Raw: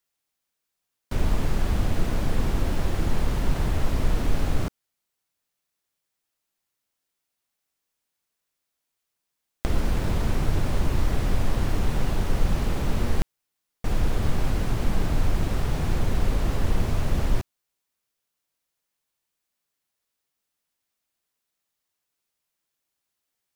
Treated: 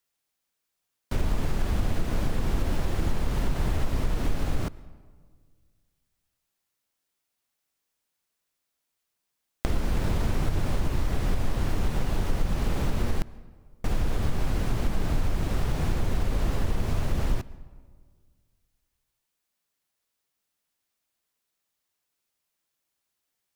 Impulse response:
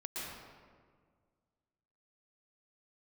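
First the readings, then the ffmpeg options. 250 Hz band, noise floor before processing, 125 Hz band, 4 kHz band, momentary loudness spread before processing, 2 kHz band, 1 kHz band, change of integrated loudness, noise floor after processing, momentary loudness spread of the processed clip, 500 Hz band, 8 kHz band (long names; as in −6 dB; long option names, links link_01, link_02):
−2.5 dB, −82 dBFS, −2.5 dB, −2.5 dB, 3 LU, −2.5 dB, −2.5 dB, −2.5 dB, −82 dBFS, 3 LU, −2.5 dB, −2.5 dB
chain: -filter_complex "[0:a]acompressor=threshold=-21dB:ratio=3,asplit=2[link_01][link_02];[1:a]atrim=start_sample=2205[link_03];[link_02][link_03]afir=irnorm=-1:irlink=0,volume=-19.5dB[link_04];[link_01][link_04]amix=inputs=2:normalize=0"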